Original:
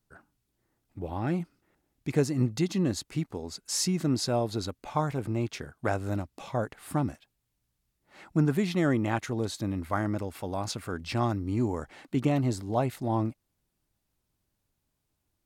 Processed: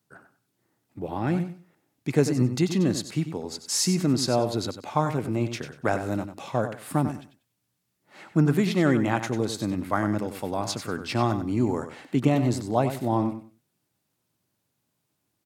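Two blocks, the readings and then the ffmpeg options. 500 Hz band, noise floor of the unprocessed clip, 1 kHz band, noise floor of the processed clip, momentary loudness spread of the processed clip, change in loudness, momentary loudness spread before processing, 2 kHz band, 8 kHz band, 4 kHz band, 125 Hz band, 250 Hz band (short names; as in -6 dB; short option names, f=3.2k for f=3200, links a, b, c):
+4.5 dB, -80 dBFS, +4.5 dB, -77 dBFS, 9 LU, +4.0 dB, 9 LU, +4.5 dB, +4.5 dB, +4.5 dB, +3.0 dB, +4.5 dB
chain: -filter_complex "[0:a]highpass=f=110:w=0.5412,highpass=f=110:w=1.3066,asplit=2[a][b];[b]aecho=0:1:95|190|285:0.316|0.0696|0.0153[c];[a][c]amix=inputs=2:normalize=0,volume=4dB"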